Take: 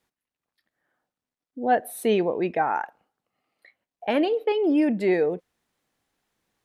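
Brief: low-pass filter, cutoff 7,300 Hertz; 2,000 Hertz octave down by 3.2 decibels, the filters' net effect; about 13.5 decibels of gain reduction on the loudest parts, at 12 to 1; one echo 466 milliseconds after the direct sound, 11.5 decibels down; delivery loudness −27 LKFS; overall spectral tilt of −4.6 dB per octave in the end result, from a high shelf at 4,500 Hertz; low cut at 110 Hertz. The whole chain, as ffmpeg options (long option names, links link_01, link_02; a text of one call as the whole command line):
ffmpeg -i in.wav -af "highpass=110,lowpass=7300,equalizer=frequency=2000:width_type=o:gain=-5.5,highshelf=frequency=4500:gain=6.5,acompressor=threshold=-31dB:ratio=12,aecho=1:1:466:0.266,volume=9dB" out.wav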